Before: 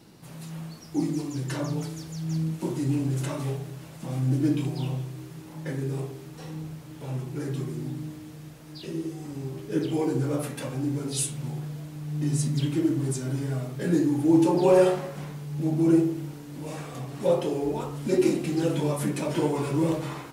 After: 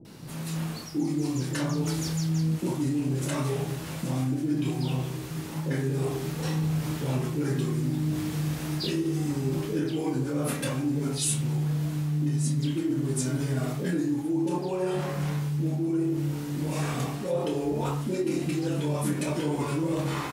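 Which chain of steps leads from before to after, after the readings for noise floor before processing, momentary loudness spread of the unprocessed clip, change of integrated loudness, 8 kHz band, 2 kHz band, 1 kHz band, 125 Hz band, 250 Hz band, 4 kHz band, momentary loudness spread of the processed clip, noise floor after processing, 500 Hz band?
−44 dBFS, 17 LU, −1.5 dB, +2.0 dB, +2.5 dB, −1.0 dB, +1.5 dB, −1.0 dB, +3.0 dB, 4 LU, −36 dBFS, −4.5 dB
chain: camcorder AGC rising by 5 dB per second
double-tracking delay 27 ms −7 dB
reversed playback
downward compressor 6 to 1, threshold −29 dBFS, peak gain reduction 16 dB
reversed playback
multiband delay without the direct sound lows, highs 50 ms, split 580 Hz
level +5 dB

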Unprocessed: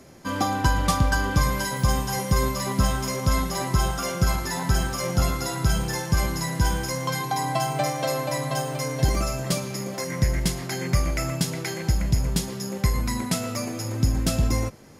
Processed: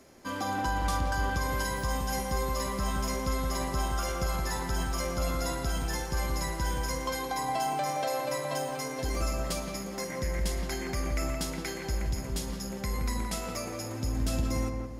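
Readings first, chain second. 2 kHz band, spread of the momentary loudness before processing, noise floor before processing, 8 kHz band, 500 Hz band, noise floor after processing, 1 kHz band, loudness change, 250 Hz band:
−6.0 dB, 4 LU, −33 dBFS, −7.0 dB, −4.5 dB, −38 dBFS, −4.5 dB, −7.0 dB, −7.5 dB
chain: parametric band 130 Hz −9.5 dB 1.1 octaves
brickwall limiter −17 dBFS, peak gain reduction 7.5 dB
on a send: feedback echo with a low-pass in the loop 172 ms, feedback 46%, low-pass 1,400 Hz, level −3 dB
on the sum: surface crackle 82 per second −53 dBFS
level −5.5 dB

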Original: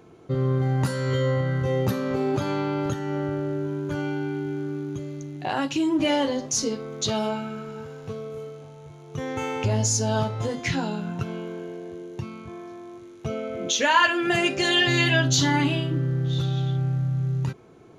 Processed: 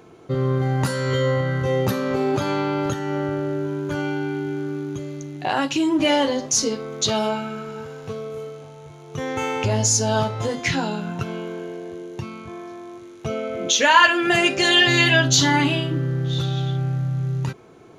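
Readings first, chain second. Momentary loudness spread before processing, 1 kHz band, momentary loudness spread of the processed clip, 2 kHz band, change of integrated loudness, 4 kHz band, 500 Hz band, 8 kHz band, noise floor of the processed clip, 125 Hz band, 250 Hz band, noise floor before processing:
17 LU, +5.0 dB, 18 LU, +5.5 dB, +4.0 dB, +5.5 dB, +4.0 dB, +5.5 dB, −43 dBFS, +1.0 dB, +2.5 dB, −45 dBFS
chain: low-shelf EQ 340 Hz −5 dB
level +5.5 dB

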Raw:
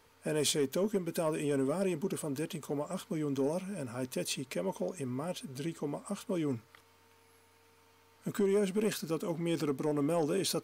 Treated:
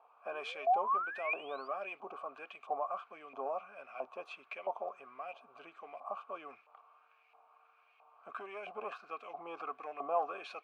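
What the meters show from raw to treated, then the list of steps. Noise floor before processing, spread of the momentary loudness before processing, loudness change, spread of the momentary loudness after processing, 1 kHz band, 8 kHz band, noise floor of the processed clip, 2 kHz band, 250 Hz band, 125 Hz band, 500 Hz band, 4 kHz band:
−64 dBFS, 9 LU, −5.5 dB, 16 LU, +8.0 dB, below −30 dB, −68 dBFS, +1.5 dB, −24.5 dB, below −35 dB, −8.5 dB, −13.5 dB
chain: sound drawn into the spectrogram rise, 0:00.32–0:01.68, 340–4,900 Hz −40 dBFS
auto-filter band-pass saw up 1.5 Hz 820–2,300 Hz
formant filter a
level +17.5 dB

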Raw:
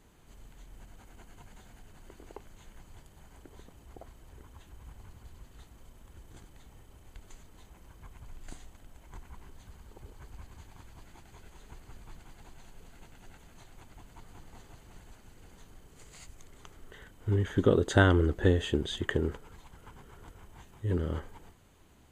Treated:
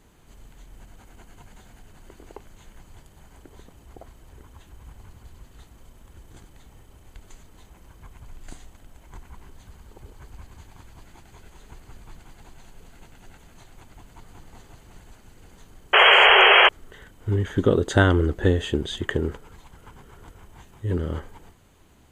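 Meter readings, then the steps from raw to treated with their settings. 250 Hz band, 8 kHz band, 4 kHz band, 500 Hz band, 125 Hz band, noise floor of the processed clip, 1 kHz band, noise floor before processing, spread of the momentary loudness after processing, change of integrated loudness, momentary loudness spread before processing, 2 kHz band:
+4.5 dB, +4.5 dB, +21.0 dB, +7.0 dB, +4.5 dB, −53 dBFS, +17.5 dB, −57 dBFS, 20 LU, +10.5 dB, 13 LU, +17.5 dB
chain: sound drawn into the spectrogram noise, 0:15.93–0:16.69, 370–3,300 Hz −18 dBFS
level +4.5 dB

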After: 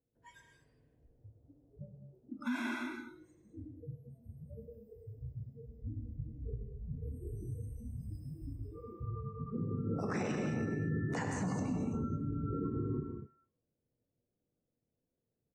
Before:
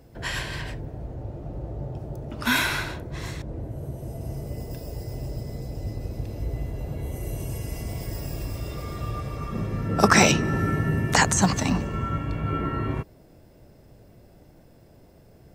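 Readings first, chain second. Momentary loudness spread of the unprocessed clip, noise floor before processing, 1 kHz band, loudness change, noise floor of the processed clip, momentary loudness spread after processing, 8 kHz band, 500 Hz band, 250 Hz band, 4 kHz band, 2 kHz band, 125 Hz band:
15 LU, −53 dBFS, −19.0 dB, −12.5 dB, below −85 dBFS, 17 LU, −26.0 dB, −13.0 dB, −10.0 dB, −26.0 dB, −19.0 dB, −11.5 dB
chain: on a send: single-tap delay 334 ms −13.5 dB
on the sum: noise reduction from a noise print of the clip's start 29 dB
octave-band graphic EQ 125/250/4,000 Hz +4/+8/−11 dB
reverb whose tail is shaped and stops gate 260 ms flat, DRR 3.5 dB
downward compressor 1.5 to 1, threshold −24 dBFS, peak gain reduction 6 dB
tuned comb filter 360 Hz, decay 0.84 s, mix 60%
hollow resonant body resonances 470/3,500 Hz, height 10 dB
brickwall limiter −22.5 dBFS, peak gain reduction 11 dB
low-pass filter 6,100 Hz 12 dB per octave
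level −4.5 dB

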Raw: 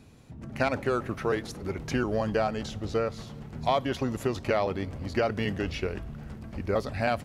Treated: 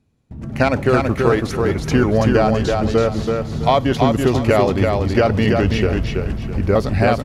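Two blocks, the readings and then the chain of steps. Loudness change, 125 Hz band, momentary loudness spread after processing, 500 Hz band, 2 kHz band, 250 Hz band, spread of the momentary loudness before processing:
+12.5 dB, +15.5 dB, 6 LU, +12.0 dB, +10.5 dB, +14.0 dB, 13 LU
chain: noise gate with hold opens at −37 dBFS
low-shelf EQ 320 Hz +6 dB
automatic gain control gain up to 3.5 dB
on a send: repeating echo 330 ms, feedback 30%, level −4 dB
on the sum: level +5.5 dB

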